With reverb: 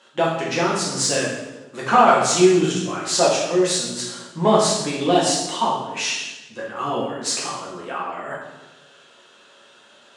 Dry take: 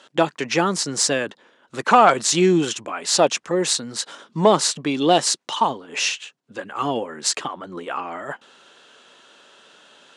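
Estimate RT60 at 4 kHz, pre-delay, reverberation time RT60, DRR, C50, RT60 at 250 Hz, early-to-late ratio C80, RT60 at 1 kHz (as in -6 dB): 0.90 s, 5 ms, 1.1 s, -5.5 dB, 2.5 dB, 1.4 s, 5.0 dB, 1.0 s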